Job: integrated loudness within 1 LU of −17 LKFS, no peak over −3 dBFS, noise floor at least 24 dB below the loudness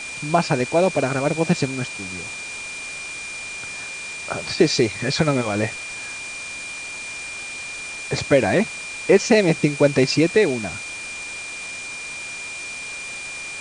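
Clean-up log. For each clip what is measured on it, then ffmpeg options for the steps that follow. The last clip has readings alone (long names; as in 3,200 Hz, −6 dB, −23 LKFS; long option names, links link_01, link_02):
interfering tone 2,400 Hz; level of the tone −31 dBFS; background noise floor −33 dBFS; target noise floor −47 dBFS; integrated loudness −22.5 LKFS; sample peak −3.0 dBFS; target loudness −17.0 LKFS
→ -af "bandreject=frequency=2400:width=30"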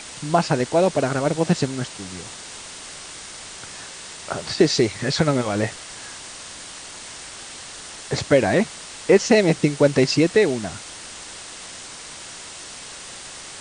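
interfering tone none found; background noise floor −38 dBFS; target noise floor −45 dBFS
→ -af "afftdn=noise_reduction=7:noise_floor=-38"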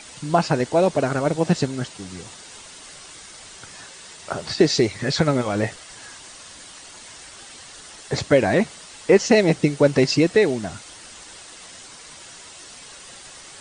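background noise floor −43 dBFS; target noise floor −45 dBFS
→ -af "afftdn=noise_reduction=6:noise_floor=-43"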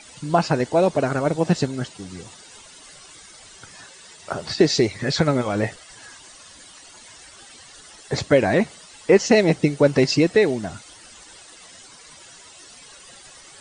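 background noise floor −46 dBFS; integrated loudness −20.5 LKFS; sample peak −3.0 dBFS; target loudness −17.0 LKFS
→ -af "volume=3.5dB,alimiter=limit=-3dB:level=0:latency=1"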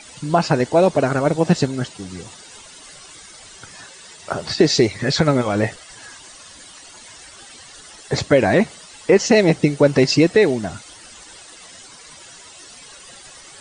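integrated loudness −17.5 LKFS; sample peak −3.0 dBFS; background noise floor −43 dBFS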